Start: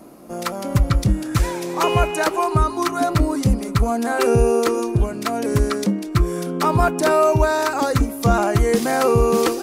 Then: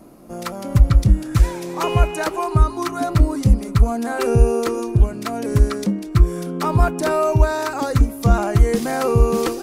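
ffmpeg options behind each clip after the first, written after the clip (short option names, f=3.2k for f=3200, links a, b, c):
-af "lowshelf=f=120:g=11.5,volume=-3.5dB"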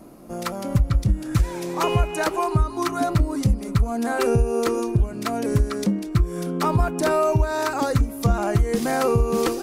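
-af "acompressor=threshold=-15dB:ratio=6"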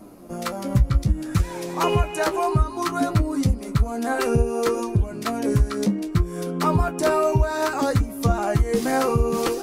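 -af "flanger=delay=9.4:depth=6.5:regen=37:speed=0.62:shape=triangular,volume=4dB"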